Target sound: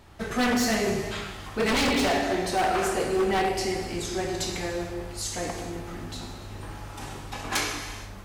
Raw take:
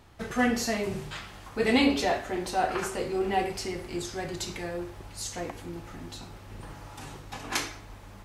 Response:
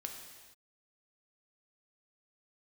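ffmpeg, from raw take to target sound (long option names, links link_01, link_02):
-filter_complex "[1:a]atrim=start_sample=2205[link_01];[0:a][link_01]afir=irnorm=-1:irlink=0,aeval=exprs='0.0596*(abs(mod(val(0)/0.0596+3,4)-2)-1)':channel_layout=same,volume=6.5dB"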